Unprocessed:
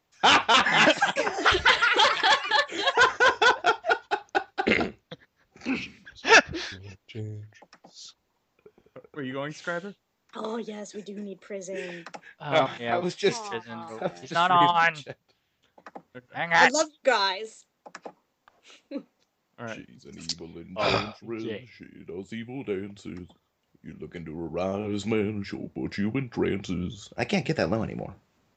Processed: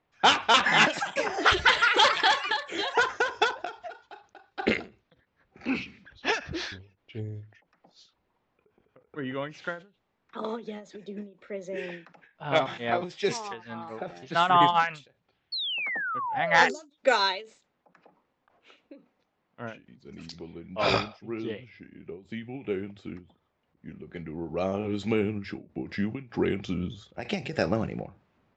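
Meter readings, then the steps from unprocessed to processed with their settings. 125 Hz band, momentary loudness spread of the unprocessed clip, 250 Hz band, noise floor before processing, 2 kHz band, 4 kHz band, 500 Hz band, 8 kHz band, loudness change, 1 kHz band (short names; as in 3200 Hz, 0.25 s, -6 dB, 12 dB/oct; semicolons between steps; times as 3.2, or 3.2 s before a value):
-1.5 dB, 21 LU, -2.0 dB, -75 dBFS, -3.0 dB, -1.5 dB, -2.5 dB, -5.0 dB, -2.5 dB, -2.0 dB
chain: low-pass opened by the level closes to 2600 Hz, open at -17.5 dBFS; painted sound fall, 15.52–16.9, 270–4500 Hz -31 dBFS; ending taper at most 160 dB/s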